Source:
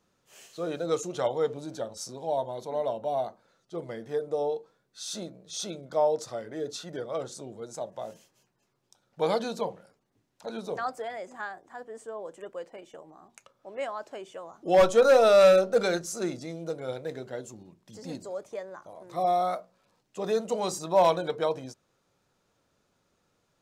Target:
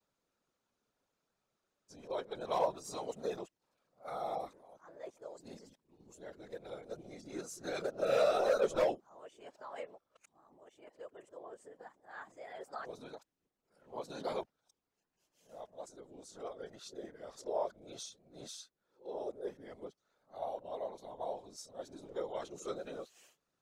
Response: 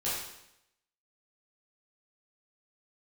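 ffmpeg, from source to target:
-af "areverse,afftfilt=real='hypot(re,im)*cos(2*PI*random(0))':imag='hypot(re,im)*sin(2*PI*random(1))':win_size=512:overlap=0.75,equalizer=f=74:t=o:w=2.5:g=-6,volume=-5.5dB"

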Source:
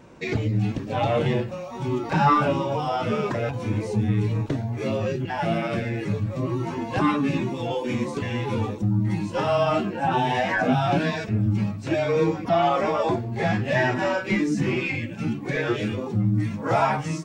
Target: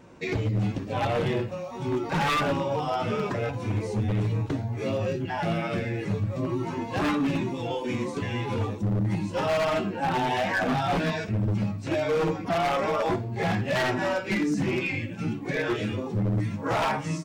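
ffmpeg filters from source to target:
-filter_complex "[0:a]asplit=2[a][b];[b]aecho=0:1:11|61:0.282|0.158[c];[a][c]amix=inputs=2:normalize=0,aeval=exprs='0.141*(abs(mod(val(0)/0.141+3,4)-2)-1)':c=same,volume=-2.5dB"

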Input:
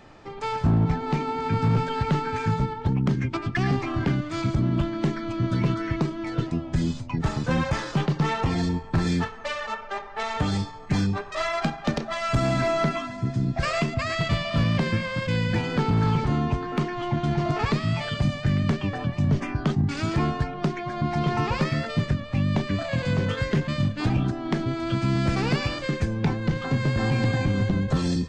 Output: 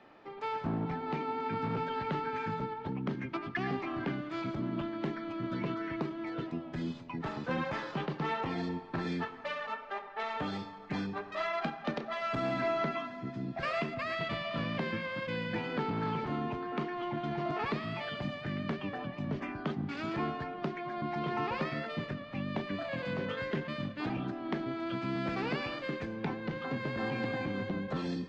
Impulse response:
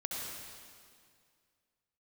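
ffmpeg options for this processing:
-filter_complex "[0:a]acrossover=split=190 4200:gain=0.126 1 0.0794[a][b][c];[a][b][c]amix=inputs=3:normalize=0,asplit=2[d][e];[1:a]atrim=start_sample=2205[f];[e][f]afir=irnorm=-1:irlink=0,volume=-17.5dB[g];[d][g]amix=inputs=2:normalize=0,volume=-7.5dB"

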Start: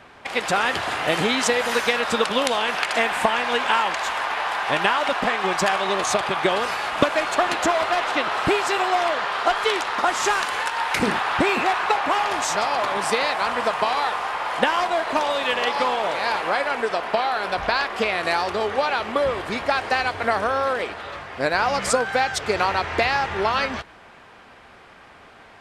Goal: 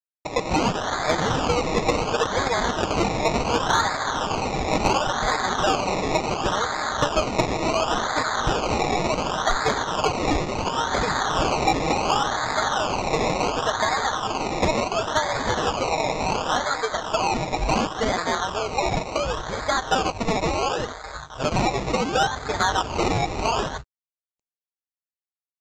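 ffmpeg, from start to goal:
-filter_complex "[0:a]afwtdn=0.0316,equalizer=f=290:w=0.9:g=-8,aecho=1:1:6.4:0.74,asubboost=boost=7:cutoff=74,asplit=2[a][b];[b]acompressor=threshold=-36dB:ratio=6,volume=-0.5dB[c];[a][c]amix=inputs=2:normalize=0,acrusher=samples=22:mix=1:aa=0.000001:lfo=1:lforange=13.2:lforate=0.7,aresample=16000,aeval=exprs='sgn(val(0))*max(abs(val(0))-0.00596,0)':c=same,aresample=44100,acontrast=56,volume=-7dB"

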